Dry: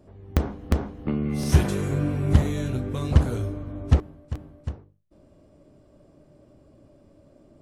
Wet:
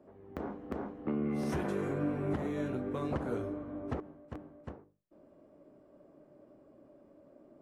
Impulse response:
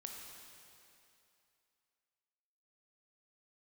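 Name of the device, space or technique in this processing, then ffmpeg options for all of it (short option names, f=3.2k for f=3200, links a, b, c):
DJ mixer with the lows and highs turned down: -filter_complex "[0:a]acrossover=split=200 2100:gain=0.126 1 0.178[a][b][c];[a][b][c]amix=inputs=3:normalize=0,alimiter=limit=-22dB:level=0:latency=1:release=143,volume=-2dB"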